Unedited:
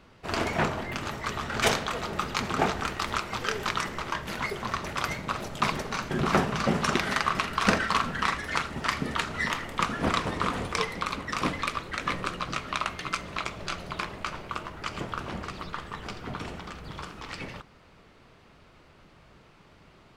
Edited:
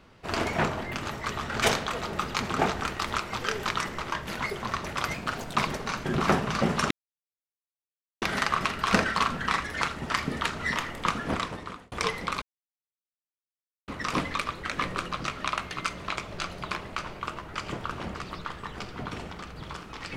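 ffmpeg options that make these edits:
ffmpeg -i in.wav -filter_complex "[0:a]asplit=6[link_01][link_02][link_03][link_04][link_05][link_06];[link_01]atrim=end=5.144[link_07];[link_02]atrim=start=5.14:end=5.59,asetpts=PTS-STARTPTS,asetrate=49833,aresample=44100[link_08];[link_03]atrim=start=5.586:end=6.96,asetpts=PTS-STARTPTS,afade=type=out:start_time=1.37:duration=0.004:curve=hsin,apad=pad_dur=1.31[link_09];[link_04]atrim=start=6.96:end=10.66,asetpts=PTS-STARTPTS,afade=type=in:duration=0.004:curve=hsin,afade=type=out:start_time=2.89:duration=0.81[link_10];[link_05]atrim=start=10.66:end=11.16,asetpts=PTS-STARTPTS,afade=type=in:duration=0.004:curve=hsin,afade=type=out:start_time=0.496:duration=0.004:curve=hsin,apad=pad_dur=1.46[link_11];[link_06]atrim=start=11.16,asetpts=PTS-STARTPTS,afade=type=in:duration=0.004:curve=hsin[link_12];[link_07][link_08]acrossfade=duration=0.004:curve1=hsin:curve2=hsin[link_13];[link_09][link_10][link_11][link_12]concat=n=4:v=0:a=1[link_14];[link_13][link_14]acrossfade=duration=0.004:curve1=hsin:curve2=hsin" out.wav

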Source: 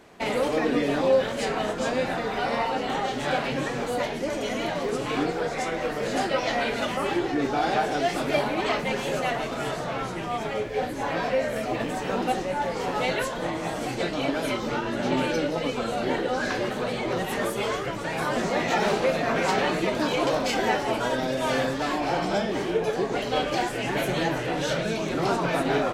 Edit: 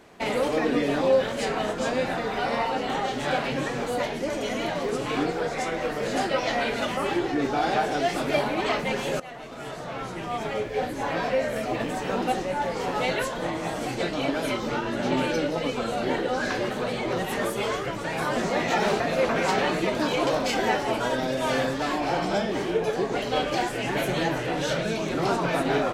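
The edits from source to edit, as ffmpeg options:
ffmpeg -i in.wav -filter_complex "[0:a]asplit=4[link_01][link_02][link_03][link_04];[link_01]atrim=end=9.2,asetpts=PTS-STARTPTS,afade=type=out:start_time=9.196:duration=0.004:curve=hsin:silence=0.141254[link_05];[link_02]atrim=start=9.2:end=19.002,asetpts=PTS-STARTPTS,afade=type=in:duration=1.29:silence=0.141254[link_06];[link_03]atrim=start=18.998:end=19.292,asetpts=PTS-STARTPTS,areverse[link_07];[link_04]atrim=start=19.288[link_08];[link_05][link_06]concat=n=2:v=0:a=1[link_09];[link_09][link_07]acrossfade=duration=0.004:curve1=hsin:curve2=hsin[link_10];[link_10][link_08]acrossfade=duration=0.004:curve1=hsin:curve2=hsin" out.wav

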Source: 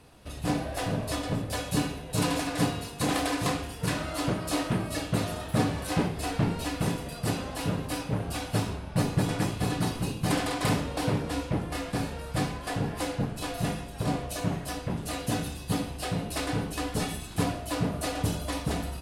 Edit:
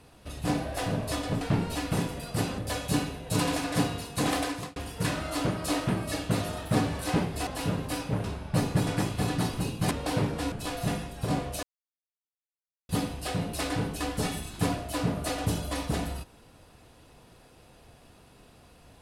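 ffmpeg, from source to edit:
ffmpeg -i in.wav -filter_complex "[0:a]asplit=10[link_01][link_02][link_03][link_04][link_05][link_06][link_07][link_08][link_09][link_10];[link_01]atrim=end=1.412[link_11];[link_02]atrim=start=6.298:end=7.472[link_12];[link_03]atrim=start=1.408:end=3.59,asetpts=PTS-STARTPTS,afade=type=out:start_time=1.802:duration=0.38[link_13];[link_04]atrim=start=3.59:end=6.302,asetpts=PTS-STARTPTS,afade=type=in:duration=0.004:curve=hsin[link_14];[link_05]atrim=start=7.468:end=8.242[link_15];[link_06]atrim=start=8.658:end=10.332[link_16];[link_07]atrim=start=10.818:end=11.432[link_17];[link_08]atrim=start=13.288:end=14.4,asetpts=PTS-STARTPTS,afade=type=out:start_time=1.108:duration=0.004:curve=hsin[link_18];[link_09]atrim=start=14.4:end=15.66,asetpts=PTS-STARTPTS,volume=0[link_19];[link_10]atrim=start=15.66,asetpts=PTS-STARTPTS,afade=type=in:duration=0.004:curve=hsin[link_20];[link_11][link_12]acrossfade=duration=0.004:curve1=hsin:curve2=hsin[link_21];[link_13][link_14]concat=n=2:v=0:a=1[link_22];[link_21][link_22]acrossfade=duration=0.004:curve1=hsin:curve2=hsin[link_23];[link_23][link_15]acrossfade=duration=0.004:curve1=hsin:curve2=hsin[link_24];[link_24][link_16]acrossfade=duration=0.004:curve1=hsin:curve2=hsin[link_25];[link_25][link_17]acrossfade=duration=0.004:curve1=hsin:curve2=hsin[link_26];[link_18][link_19][link_20]concat=n=3:v=0:a=1[link_27];[link_26][link_27]acrossfade=duration=0.004:curve1=hsin:curve2=hsin" out.wav

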